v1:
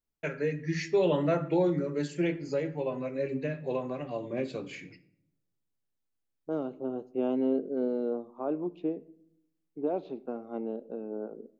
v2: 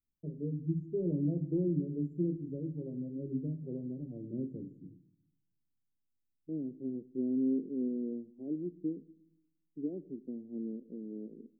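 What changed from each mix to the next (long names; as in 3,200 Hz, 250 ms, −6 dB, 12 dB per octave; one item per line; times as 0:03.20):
master: add inverse Chebyshev band-stop filter 1,400–4,900 Hz, stop band 80 dB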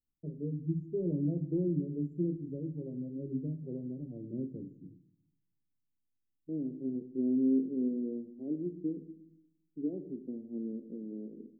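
second voice: send +9.5 dB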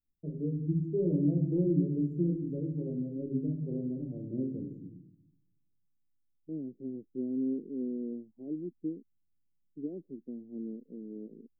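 first voice: send +10.5 dB
second voice: send off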